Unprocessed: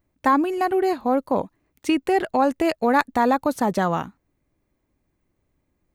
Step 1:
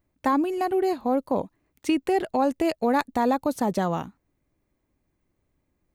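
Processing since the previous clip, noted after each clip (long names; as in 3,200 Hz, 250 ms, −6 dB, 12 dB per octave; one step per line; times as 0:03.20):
dynamic equaliser 1,500 Hz, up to −6 dB, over −34 dBFS, Q 1
level −2 dB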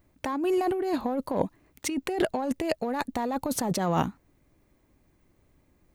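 in parallel at −6 dB: soft clipping −26 dBFS, distortion −8 dB
on the sum: compressor whose output falls as the input rises −27 dBFS, ratio −1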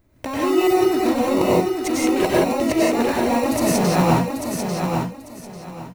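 in parallel at −5 dB: decimation without filtering 27×
on the sum: repeating echo 844 ms, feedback 24%, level −5.5 dB
convolution reverb, pre-delay 89 ms, DRR −6 dB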